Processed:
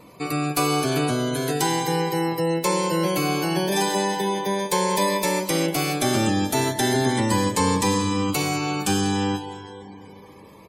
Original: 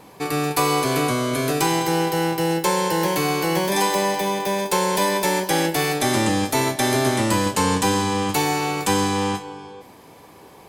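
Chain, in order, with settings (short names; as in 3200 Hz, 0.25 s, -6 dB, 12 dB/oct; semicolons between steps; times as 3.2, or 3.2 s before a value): 1.29–1.88 low shelf 330 Hz -3 dB; reverb RT60 3.4 s, pre-delay 0.139 s, DRR 14.5 dB; spectral gate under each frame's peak -25 dB strong; echo 0.192 s -21 dB; cascading phaser rising 0.37 Hz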